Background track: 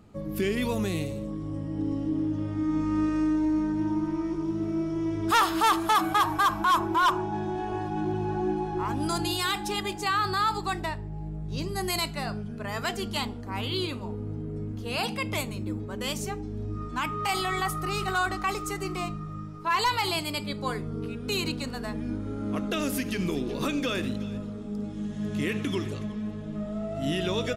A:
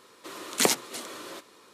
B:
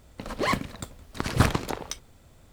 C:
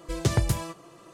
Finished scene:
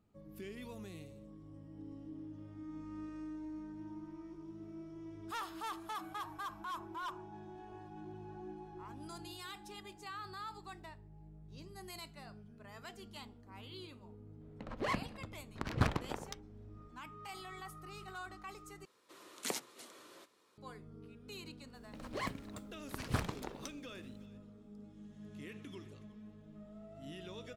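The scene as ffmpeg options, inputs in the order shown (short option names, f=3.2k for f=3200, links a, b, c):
-filter_complex "[2:a]asplit=2[a][b];[0:a]volume=-20dB[c];[a]adynamicsmooth=sensitivity=3.5:basefreq=2k[d];[c]asplit=2[e][f];[e]atrim=end=18.854[g];[1:a]atrim=end=1.73,asetpts=PTS-STARTPTS,volume=-16dB[h];[f]atrim=start=20.576[i];[d]atrim=end=2.52,asetpts=PTS-STARTPTS,volume=-10dB,afade=t=in:d=0.004:c=hsin,afade=t=out:st=2.516:d=0.004:c=hsin,adelay=14410[j];[b]atrim=end=2.52,asetpts=PTS-STARTPTS,volume=-14dB,afade=t=in:d=0.004:c=hsin,afade=t=out:st=2.516:d=0.004:c=hsin,adelay=21740[k];[g][h]acrossfade=d=0.004:c1=hsin:c2=hsin[l];[l][i]acrossfade=d=0.004:c1=hsin:c2=hsin[m];[m][j][k]amix=inputs=3:normalize=0"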